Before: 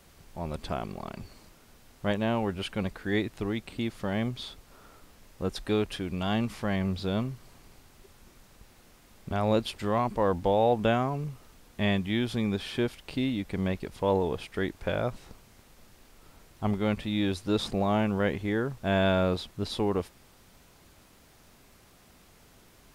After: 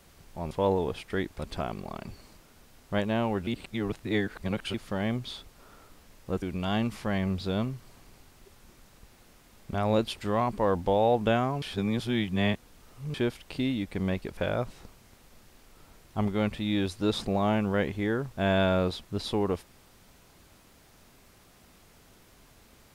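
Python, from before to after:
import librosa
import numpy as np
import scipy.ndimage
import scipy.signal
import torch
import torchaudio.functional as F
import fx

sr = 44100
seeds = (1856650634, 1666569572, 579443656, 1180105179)

y = fx.edit(x, sr, fx.reverse_span(start_s=2.59, length_s=1.27),
    fx.cut(start_s=5.54, length_s=0.46),
    fx.reverse_span(start_s=11.2, length_s=1.52),
    fx.move(start_s=13.95, length_s=0.88, to_s=0.51), tone=tone)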